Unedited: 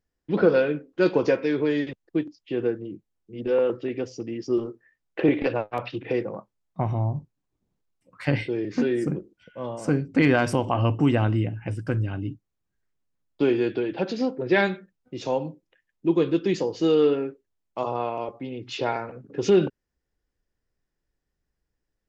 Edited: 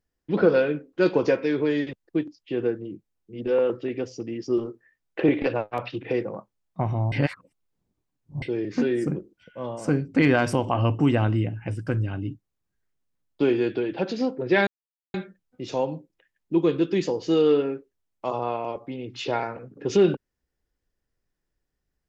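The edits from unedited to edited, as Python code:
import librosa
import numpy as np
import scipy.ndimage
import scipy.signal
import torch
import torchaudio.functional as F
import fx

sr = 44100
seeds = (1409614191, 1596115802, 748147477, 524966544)

y = fx.edit(x, sr, fx.reverse_span(start_s=7.12, length_s=1.3),
    fx.insert_silence(at_s=14.67, length_s=0.47), tone=tone)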